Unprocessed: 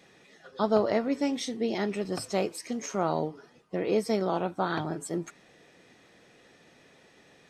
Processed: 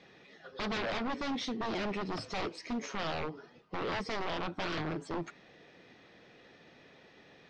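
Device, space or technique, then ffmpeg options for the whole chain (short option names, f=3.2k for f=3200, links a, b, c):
synthesiser wavefolder: -af "aeval=exprs='0.0335*(abs(mod(val(0)/0.0335+3,4)-2)-1)':c=same,lowpass=f=5k:w=0.5412,lowpass=f=5k:w=1.3066"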